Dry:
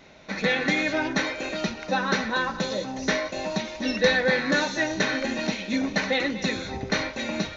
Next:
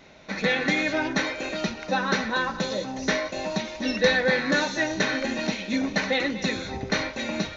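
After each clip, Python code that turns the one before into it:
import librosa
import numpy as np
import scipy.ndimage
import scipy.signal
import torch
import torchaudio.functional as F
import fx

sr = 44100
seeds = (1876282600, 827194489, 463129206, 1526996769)

y = x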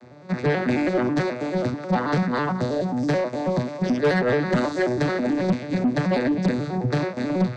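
y = fx.vocoder_arp(x, sr, chord='minor triad', root=47, every_ms=108)
y = fx.peak_eq(y, sr, hz=2900.0, db=-10.5, octaves=0.7)
y = 10.0 ** (-22.5 / 20.0) * np.tanh(y / 10.0 ** (-22.5 / 20.0))
y = y * 10.0 ** (7.5 / 20.0)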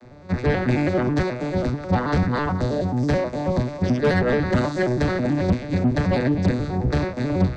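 y = fx.octave_divider(x, sr, octaves=1, level_db=-1.0)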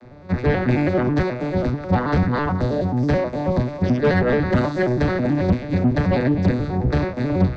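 y = fx.air_absorb(x, sr, metres=110.0)
y = y * 10.0 ** (2.0 / 20.0)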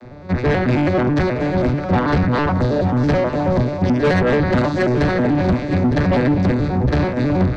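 y = 10.0 ** (-17.0 / 20.0) * np.tanh(x / 10.0 ** (-17.0 / 20.0))
y = y + 10.0 ** (-11.0 / 20.0) * np.pad(y, (int(911 * sr / 1000.0), 0))[:len(y)]
y = y * 10.0 ** (5.5 / 20.0)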